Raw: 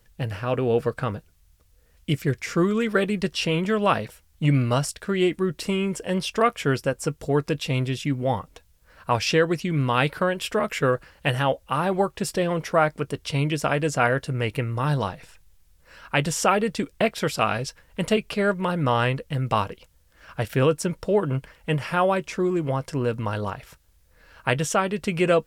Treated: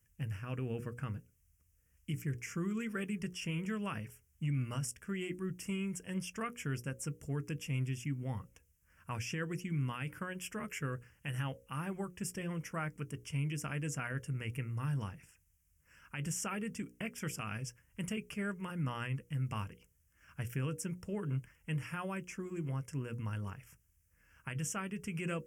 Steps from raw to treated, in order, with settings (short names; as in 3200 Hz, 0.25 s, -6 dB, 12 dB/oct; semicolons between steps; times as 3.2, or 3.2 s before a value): HPF 73 Hz; passive tone stack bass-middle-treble 6-0-2; notches 60/120/180/240/300/360/420/480/540 Hz; limiter -34.5 dBFS, peak gain reduction 9 dB; Butterworth band-stop 4000 Hz, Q 1.4; gain +6.5 dB